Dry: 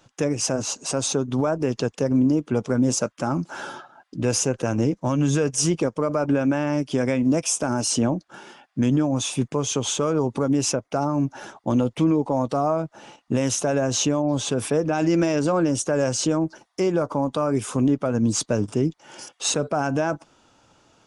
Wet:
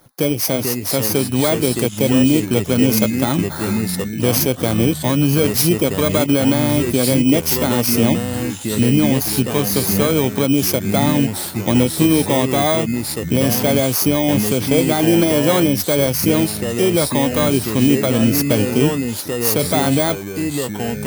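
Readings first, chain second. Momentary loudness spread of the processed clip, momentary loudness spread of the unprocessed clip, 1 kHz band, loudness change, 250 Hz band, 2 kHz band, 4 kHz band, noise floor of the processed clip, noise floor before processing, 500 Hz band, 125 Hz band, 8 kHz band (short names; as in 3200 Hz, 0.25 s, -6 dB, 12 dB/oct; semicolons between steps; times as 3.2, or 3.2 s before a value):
6 LU, 6 LU, +4.5 dB, +6.5 dB, +6.5 dB, +8.5 dB, +8.5 dB, -27 dBFS, -66 dBFS, +6.0 dB, +7.0 dB, +4.0 dB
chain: FFT order left unsorted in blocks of 16 samples; echoes that change speed 0.401 s, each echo -3 st, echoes 3, each echo -6 dB; gain +5.5 dB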